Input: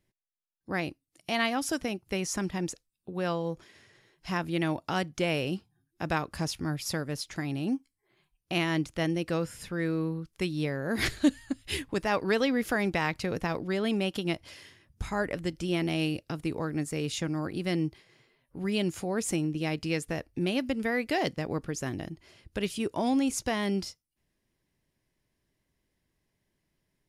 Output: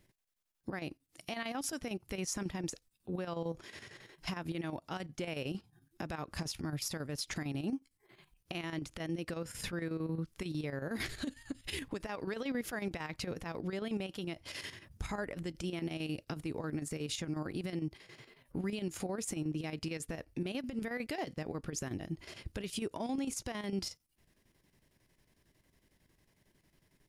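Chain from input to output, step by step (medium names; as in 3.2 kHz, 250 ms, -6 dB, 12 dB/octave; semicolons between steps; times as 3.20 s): compression 4:1, threshold -40 dBFS, peak gain reduction 18.5 dB; peak limiter -36 dBFS, peak gain reduction 10.5 dB; square tremolo 11 Hz, depth 60%, duty 70%; trim +8.5 dB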